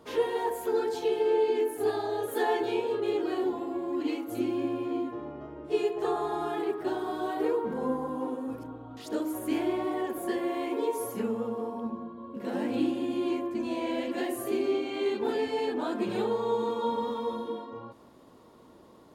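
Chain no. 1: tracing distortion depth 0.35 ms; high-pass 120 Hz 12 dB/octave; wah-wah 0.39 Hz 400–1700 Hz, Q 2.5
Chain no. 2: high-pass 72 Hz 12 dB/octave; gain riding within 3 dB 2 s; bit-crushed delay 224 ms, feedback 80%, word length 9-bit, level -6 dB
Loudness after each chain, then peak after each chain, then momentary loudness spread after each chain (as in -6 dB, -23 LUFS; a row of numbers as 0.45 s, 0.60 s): -37.0 LUFS, -29.0 LUFS; -19.0 dBFS, -13.5 dBFS; 17 LU, 6 LU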